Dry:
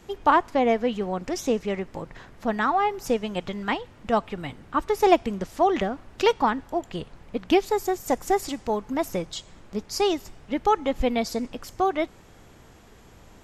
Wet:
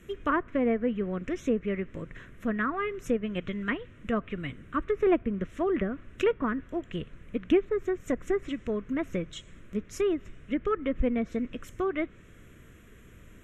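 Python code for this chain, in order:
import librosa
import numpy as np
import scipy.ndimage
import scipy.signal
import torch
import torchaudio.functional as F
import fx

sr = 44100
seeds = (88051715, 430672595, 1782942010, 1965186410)

y = fx.fixed_phaser(x, sr, hz=2000.0, stages=4)
y = fx.env_lowpass_down(y, sr, base_hz=1500.0, full_db=-23.5)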